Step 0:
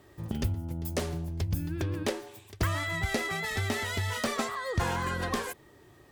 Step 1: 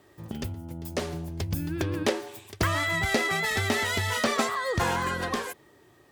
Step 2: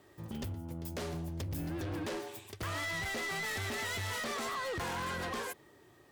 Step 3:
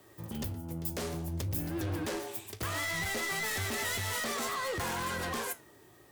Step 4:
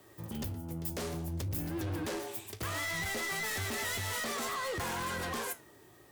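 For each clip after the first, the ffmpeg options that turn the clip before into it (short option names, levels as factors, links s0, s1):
-filter_complex "[0:a]lowshelf=f=92:g=-11.5,acrossover=split=6800[s0][s1];[s1]alimiter=level_in=2.66:limit=0.0631:level=0:latency=1:release=211,volume=0.376[s2];[s0][s2]amix=inputs=2:normalize=0,dynaudnorm=f=220:g=11:m=2"
-af "alimiter=limit=0.1:level=0:latency=1:release=32,volume=39.8,asoftclip=hard,volume=0.0251,volume=0.708"
-filter_complex "[0:a]acrossover=split=210|1300|3900[s0][s1][s2][s3];[s3]crystalizer=i=1:c=0[s4];[s0][s1][s2][s4]amix=inputs=4:normalize=0,flanger=delay=8.6:depth=10:regen=71:speed=0.6:shape=sinusoidal,volume=2.11"
-af "asoftclip=type=tanh:threshold=0.0398"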